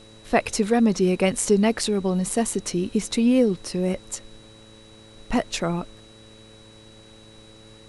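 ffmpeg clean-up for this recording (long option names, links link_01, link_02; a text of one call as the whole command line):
ffmpeg -i in.wav -af "bandreject=frequency=109.4:width_type=h:width=4,bandreject=frequency=218.8:width_type=h:width=4,bandreject=frequency=328.2:width_type=h:width=4,bandreject=frequency=437.6:width_type=h:width=4,bandreject=frequency=547:width_type=h:width=4,bandreject=frequency=3900:width=30,agate=range=-21dB:threshold=-40dB" out.wav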